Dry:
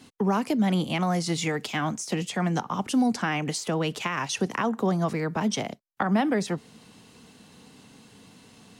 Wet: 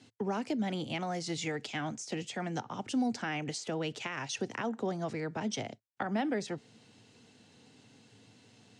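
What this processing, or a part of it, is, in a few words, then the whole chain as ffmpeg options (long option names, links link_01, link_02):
car door speaker: -af "highpass=98,equalizer=frequency=110:width_type=q:width=4:gain=9,equalizer=frequency=180:width_type=q:width=4:gain=-7,equalizer=frequency=1100:width_type=q:width=4:gain=-8,lowpass=frequency=8100:width=0.5412,lowpass=frequency=8100:width=1.3066,volume=-7dB"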